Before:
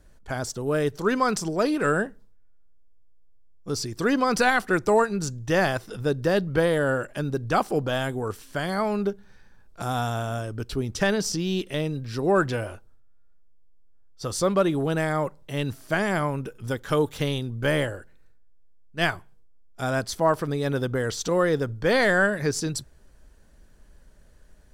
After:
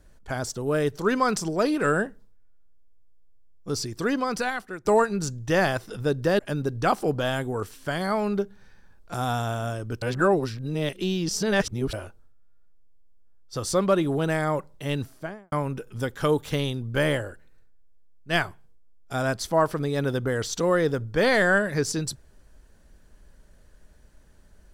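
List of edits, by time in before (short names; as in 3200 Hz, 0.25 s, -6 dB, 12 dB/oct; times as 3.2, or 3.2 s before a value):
3.78–4.85 fade out, to -18 dB
6.39–7.07 cut
10.7–12.61 reverse
15.6–16.2 studio fade out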